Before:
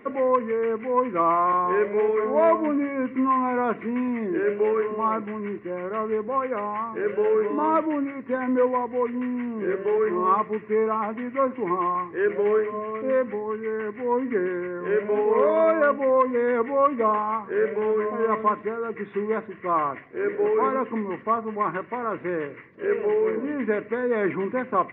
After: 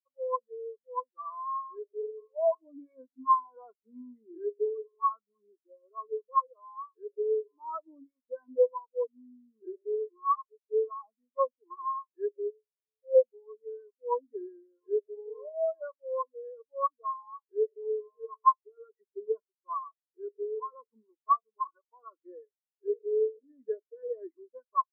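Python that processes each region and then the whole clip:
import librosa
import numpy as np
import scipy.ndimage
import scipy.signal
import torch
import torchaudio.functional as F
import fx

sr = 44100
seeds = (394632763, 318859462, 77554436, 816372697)

y = fx.chain(x, sr, fx.formant_cascade(vowel='e'),
    fx.band_squash(depth_pct=40), at=(12.5, 13.15))
y = fx.highpass(y, sr, hz=610.0, slope=6)
y = fx.rider(y, sr, range_db=4, speed_s=0.5)
y = fx.spectral_expand(y, sr, expansion=4.0)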